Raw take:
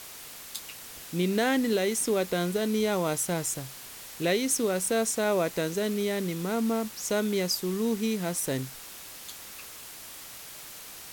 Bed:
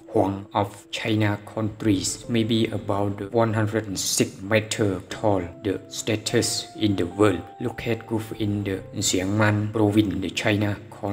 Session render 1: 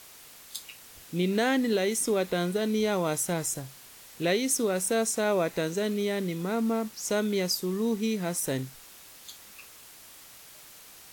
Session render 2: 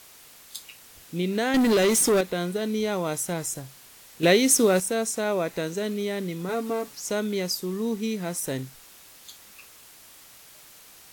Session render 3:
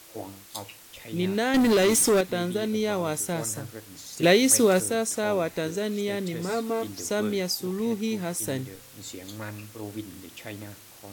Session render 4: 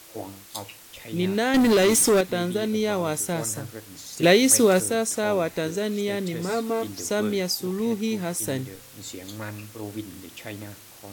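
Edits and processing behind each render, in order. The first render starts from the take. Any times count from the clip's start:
noise print and reduce 6 dB
1.54–2.21 s: waveshaping leveller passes 3; 4.23–4.80 s: gain +7.5 dB; 6.48–7.00 s: comb 7 ms, depth 75%
add bed -17.5 dB
trim +2 dB

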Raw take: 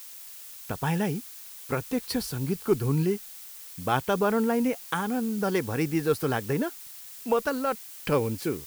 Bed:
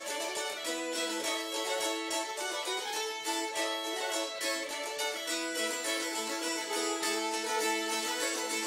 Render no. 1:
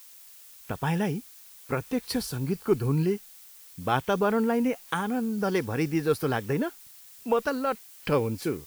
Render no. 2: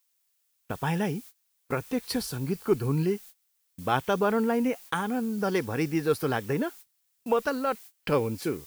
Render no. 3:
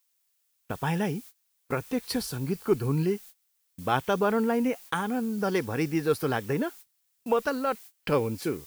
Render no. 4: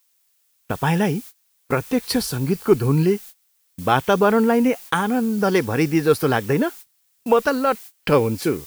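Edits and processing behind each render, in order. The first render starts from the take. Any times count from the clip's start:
noise print and reduce 6 dB
bass shelf 140 Hz -3.5 dB; gate -44 dBFS, range -23 dB
no audible change
trim +8.5 dB; peak limiter -3 dBFS, peak gain reduction 1.5 dB

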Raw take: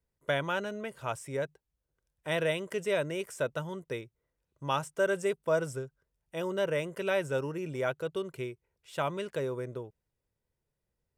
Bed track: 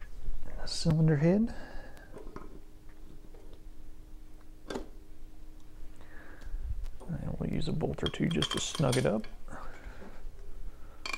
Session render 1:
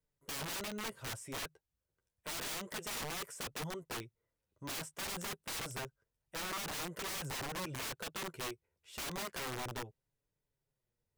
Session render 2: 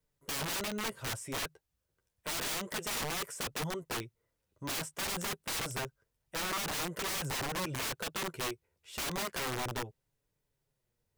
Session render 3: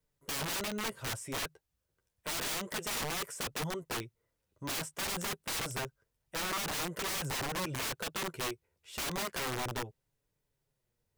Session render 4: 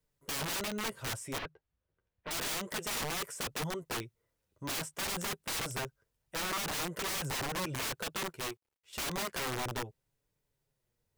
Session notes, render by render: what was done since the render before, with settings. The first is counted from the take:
flange 0.29 Hz, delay 6.5 ms, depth 5.2 ms, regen -11%; integer overflow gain 35.5 dB
trim +5 dB
no audible change
1.38–2.31 s: distance through air 310 m; 8.27–8.93 s: companding laws mixed up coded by A

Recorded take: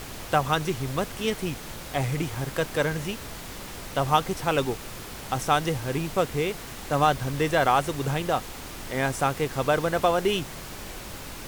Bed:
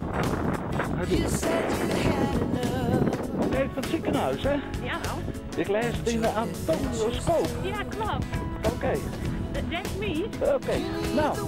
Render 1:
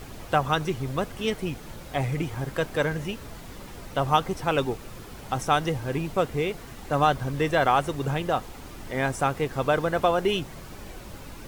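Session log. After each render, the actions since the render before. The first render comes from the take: noise reduction 8 dB, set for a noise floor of -39 dBFS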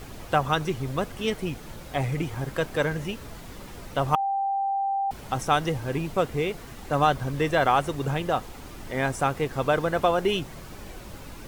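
4.15–5.11 s: bleep 787 Hz -23 dBFS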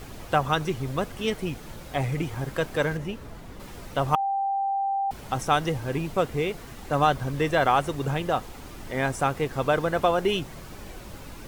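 2.97–3.60 s: treble shelf 2.3 kHz -8 dB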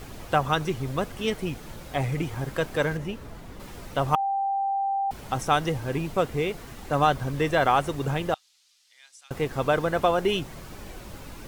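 8.34–9.31 s: ladder band-pass 5.4 kHz, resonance 30%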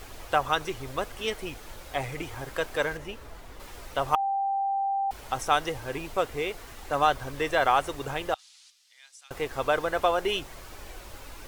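8.39–8.70 s: time-frequency box 750–11000 Hz +9 dB; peaking EQ 170 Hz -14 dB 1.6 oct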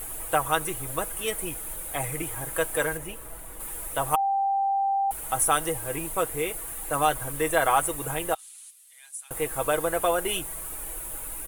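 resonant high shelf 7.3 kHz +13.5 dB, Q 3; comb 6.2 ms, depth 51%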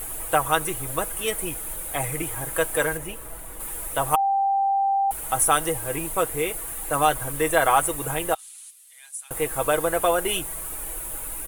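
trim +3 dB

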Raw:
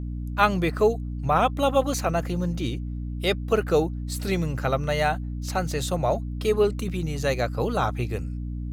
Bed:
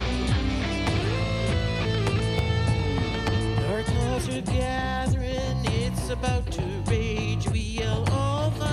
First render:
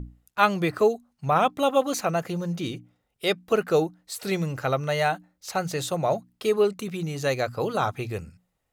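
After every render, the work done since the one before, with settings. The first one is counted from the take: hum notches 60/120/180/240/300 Hz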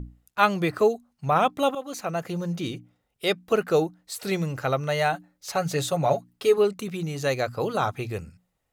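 1.75–2.40 s: fade in, from -14 dB; 5.13–6.58 s: comb 7.1 ms, depth 62%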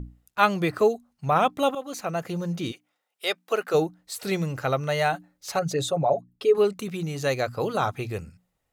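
2.71–3.73 s: high-pass 920 Hz -> 400 Hz; 5.59–6.55 s: resonances exaggerated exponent 1.5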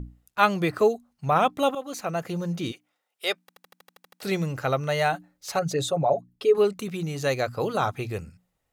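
3.41 s: stutter in place 0.08 s, 10 plays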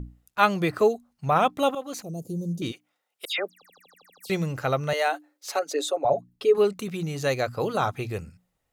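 2.02–2.62 s: Chebyshev band-stop 330–7700 Hz; 3.25–4.30 s: phase dispersion lows, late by 135 ms, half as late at 2.7 kHz; 4.93–6.05 s: Chebyshev high-pass 280 Hz, order 5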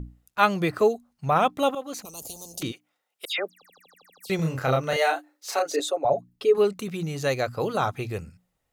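2.05–2.63 s: spectrum-flattening compressor 10:1; 4.36–5.80 s: doubling 31 ms -2.5 dB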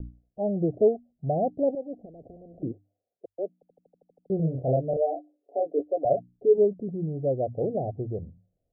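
steep low-pass 720 Hz 96 dB/octave; hum notches 50/100 Hz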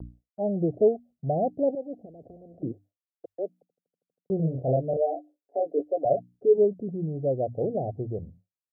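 high-pass 62 Hz; expander -47 dBFS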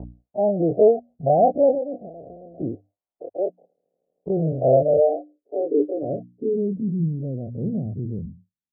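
every event in the spectrogram widened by 60 ms; low-pass sweep 740 Hz -> 210 Hz, 4.42–6.76 s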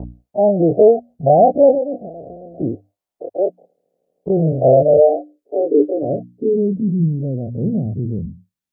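trim +6.5 dB; peak limiter -2 dBFS, peak gain reduction 3 dB

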